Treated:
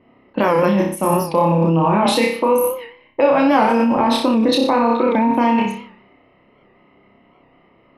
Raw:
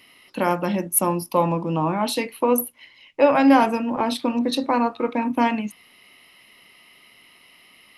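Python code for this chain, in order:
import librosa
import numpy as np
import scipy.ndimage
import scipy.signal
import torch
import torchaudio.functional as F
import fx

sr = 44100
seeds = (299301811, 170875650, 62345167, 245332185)

p1 = fx.room_flutter(x, sr, wall_m=5.2, rt60_s=0.57)
p2 = fx.over_compress(p1, sr, threshold_db=-22.0, ratio=-0.5)
p3 = p1 + F.gain(torch.from_numpy(p2), 0.0).numpy()
p4 = fx.high_shelf(p3, sr, hz=5000.0, db=-9.0)
p5 = fx.env_lowpass(p4, sr, base_hz=630.0, full_db=-13.5)
y = fx.record_warp(p5, sr, rpm=78.0, depth_cents=100.0)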